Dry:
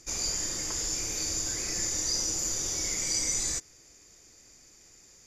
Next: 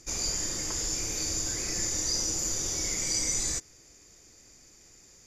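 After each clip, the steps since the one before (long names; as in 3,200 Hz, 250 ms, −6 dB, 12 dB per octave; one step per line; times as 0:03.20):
low-shelf EQ 490 Hz +3 dB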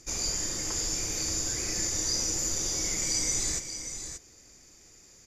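single-tap delay 581 ms −9 dB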